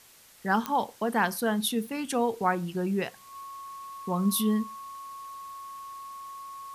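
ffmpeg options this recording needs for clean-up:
ffmpeg -i in.wav -af "adeclick=threshold=4,bandreject=frequency=1100:width=30,afwtdn=0.002" out.wav

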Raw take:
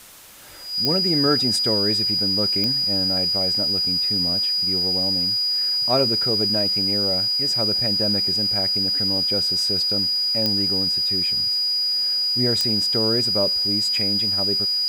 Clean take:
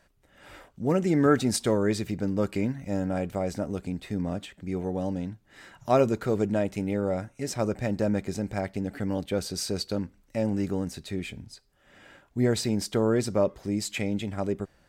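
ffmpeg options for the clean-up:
ffmpeg -i in.wav -af "adeclick=threshold=4,bandreject=frequency=4900:width=30,afwtdn=0.0063" out.wav

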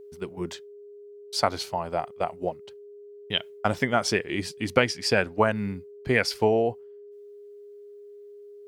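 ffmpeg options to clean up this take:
ffmpeg -i in.wav -af "bandreject=frequency=410:width=30" out.wav

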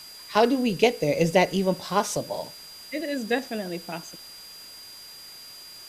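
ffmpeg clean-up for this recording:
ffmpeg -i in.wav -af "bandreject=frequency=4800:width=30,afftdn=noise_reduction=25:noise_floor=-44" out.wav

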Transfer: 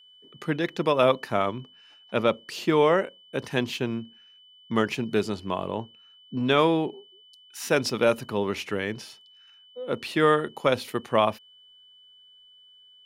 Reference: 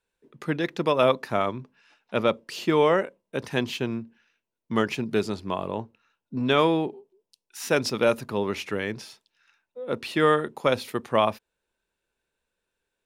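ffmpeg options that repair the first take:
ffmpeg -i in.wav -af "bandreject=frequency=3000:width=30" out.wav

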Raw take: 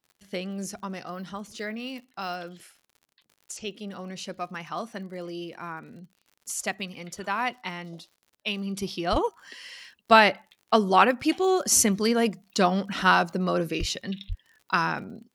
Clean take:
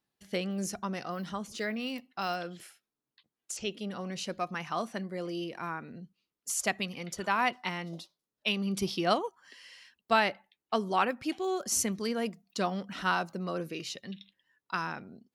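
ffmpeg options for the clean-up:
ffmpeg -i in.wav -filter_complex "[0:a]adeclick=threshold=4,asplit=3[link_01][link_02][link_03];[link_01]afade=type=out:start_time=9.11:duration=0.02[link_04];[link_02]highpass=frequency=140:width=0.5412,highpass=frequency=140:width=1.3066,afade=type=in:start_time=9.11:duration=0.02,afade=type=out:start_time=9.23:duration=0.02[link_05];[link_03]afade=type=in:start_time=9.23:duration=0.02[link_06];[link_04][link_05][link_06]amix=inputs=3:normalize=0,asplit=3[link_07][link_08][link_09];[link_07]afade=type=out:start_time=13.79:duration=0.02[link_10];[link_08]highpass=frequency=140:width=0.5412,highpass=frequency=140:width=1.3066,afade=type=in:start_time=13.79:duration=0.02,afade=type=out:start_time=13.91:duration=0.02[link_11];[link_09]afade=type=in:start_time=13.91:duration=0.02[link_12];[link_10][link_11][link_12]amix=inputs=3:normalize=0,asplit=3[link_13][link_14][link_15];[link_13]afade=type=out:start_time=14.28:duration=0.02[link_16];[link_14]highpass=frequency=140:width=0.5412,highpass=frequency=140:width=1.3066,afade=type=in:start_time=14.28:duration=0.02,afade=type=out:start_time=14.4:duration=0.02[link_17];[link_15]afade=type=in:start_time=14.4:duration=0.02[link_18];[link_16][link_17][link_18]amix=inputs=3:normalize=0,asetnsamples=nb_out_samples=441:pad=0,asendcmd='9.16 volume volume -9dB',volume=0dB" out.wav

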